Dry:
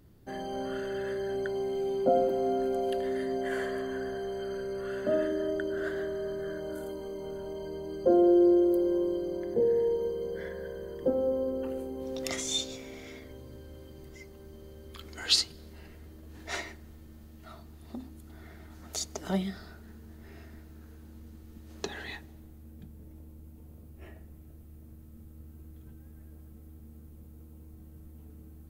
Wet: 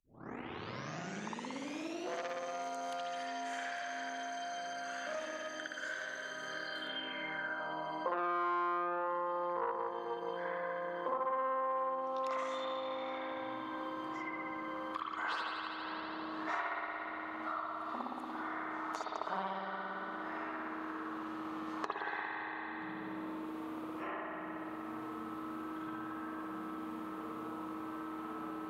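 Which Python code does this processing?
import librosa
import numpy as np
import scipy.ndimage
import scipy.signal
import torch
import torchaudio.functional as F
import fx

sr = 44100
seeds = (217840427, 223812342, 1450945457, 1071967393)

y = fx.tape_start_head(x, sr, length_s=2.17)
y = fx.rev_spring(y, sr, rt60_s=1.8, pass_ms=(57,), chirp_ms=25, drr_db=-8.0)
y = fx.tube_stage(y, sr, drive_db=16.0, bias=0.6)
y = fx.filter_sweep_bandpass(y, sr, from_hz=6300.0, to_hz=1100.0, start_s=6.45, end_s=7.74, q=4.6)
y = fx.band_squash(y, sr, depth_pct=100)
y = F.gain(torch.from_numpy(y), 10.0).numpy()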